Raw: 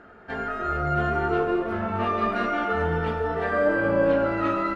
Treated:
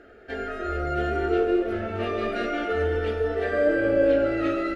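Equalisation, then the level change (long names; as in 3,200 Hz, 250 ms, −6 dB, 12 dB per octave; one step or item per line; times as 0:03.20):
phaser with its sweep stopped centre 410 Hz, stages 4
+3.0 dB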